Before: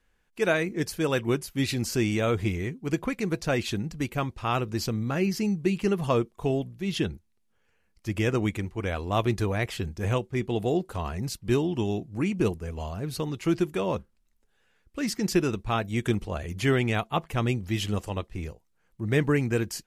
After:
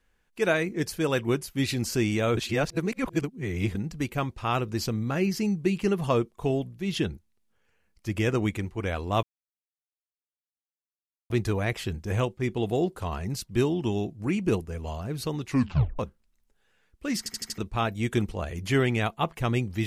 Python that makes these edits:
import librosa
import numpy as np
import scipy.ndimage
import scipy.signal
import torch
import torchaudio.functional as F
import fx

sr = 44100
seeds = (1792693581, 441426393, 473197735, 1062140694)

y = fx.edit(x, sr, fx.reverse_span(start_s=2.37, length_s=1.38),
    fx.insert_silence(at_s=9.23, length_s=2.07),
    fx.tape_stop(start_s=13.4, length_s=0.52),
    fx.stutter_over(start_s=15.11, slice_s=0.08, count=5), tone=tone)